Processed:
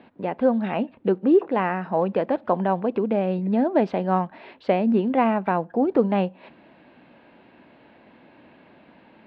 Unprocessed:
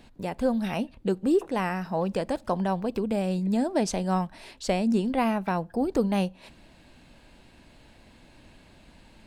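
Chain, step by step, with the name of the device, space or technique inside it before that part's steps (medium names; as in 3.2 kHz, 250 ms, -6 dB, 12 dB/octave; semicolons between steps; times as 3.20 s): early digital voice recorder (band-pass 240–3800 Hz; block-companded coder 7-bit); distance through air 430 m; trim +7.5 dB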